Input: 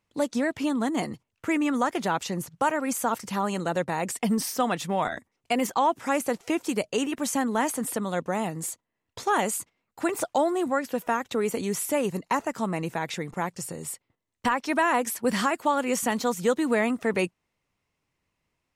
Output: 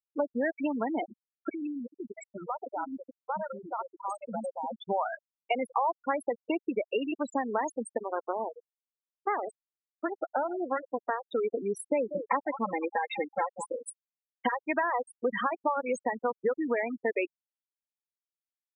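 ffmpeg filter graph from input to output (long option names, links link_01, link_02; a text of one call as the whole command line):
ffmpeg -i in.wav -filter_complex "[0:a]asettb=1/sr,asplit=3[link_01][link_02][link_03];[link_01]atrim=end=1.494[link_04];[link_02]atrim=start=1.49:end=4.77,asetpts=PTS-STARTPTS,afade=type=in:duration=0.004:curve=qsin,afade=type=out:start_time=3.276:duration=0.004:curve=qsin,acompressor=threshold=-28dB:ratio=8:attack=3.2:release=140:knee=1:detection=peak,acrossover=split=440|2200[link_05][link_06][link_07];[link_05]adelay=50[link_08];[link_06]adelay=680[link_09];[link_08][link_09][link_07]amix=inputs=3:normalize=0,atrim=end_sample=144648[link_10];[link_03]atrim=start=4.766[link_11];[link_04][link_10]acrossfade=duration=0.004:curve1=hsin:curve2=qsin[link_12];[link_12][link_11]acrossfade=duration=0.004:curve1=qsin:curve2=hsin,asettb=1/sr,asplit=3[link_13][link_14][link_15];[link_13]atrim=end=7.974[link_16];[link_14]atrim=start=7.97:end=11.23,asetpts=PTS-STARTPTS,afade=type=in:duration=0.004:curve=qsin,afade=type=out:start_time=3.256:duration=0.004:curve=qsin,highpass=frequency=80:width=0.5412,highpass=frequency=80:width=1.3066,aeval=exprs='max(val(0),0)':channel_layout=same,aecho=1:1:113|226|339|452:0.158|0.0761|0.0365|0.0175,atrim=end_sample=143766[link_17];[link_15]atrim=start=11.226[link_18];[link_16][link_17]acrossfade=duration=0.004:curve1=hsin:curve2=qsin[link_19];[link_19][link_18]acrossfade=duration=0.004:curve1=qsin:curve2=hsin,asettb=1/sr,asplit=3[link_20][link_21][link_22];[link_20]atrim=end=11.754[link_23];[link_21]atrim=start=11.75:end=14.54,asetpts=PTS-STARTPTS,afade=type=in:duration=0.004:curve=qsin,afade=type=out:start_time=2.786:duration=0.004:curve=qsin,highpass=50,aecho=1:1:3.8:0.86,atrim=end_sample=123039,aecho=1:1:189|378|567:0.211|0.0761|0.0274,atrim=end_sample=123039[link_24];[link_22]atrim=start=14.536[link_25];[link_23][link_24]acrossfade=duration=0.004:curve1=hsin:curve2=qsin[link_26];[link_26][link_25]acrossfade=duration=0.004:curve1=qsin:curve2=hsin,highpass=380,acrossover=split=3600|7400[link_27][link_28][link_29];[link_27]acompressor=threshold=-30dB:ratio=4[link_30];[link_28]acompressor=threshold=-52dB:ratio=4[link_31];[link_29]acompressor=threshold=-38dB:ratio=4[link_32];[link_30][link_31][link_32]amix=inputs=3:normalize=0,afftfilt=real='re*gte(hypot(re,im),0.0562)':imag='im*gte(hypot(re,im),0.0562)':win_size=1024:overlap=0.75,volume=4.5dB" out.wav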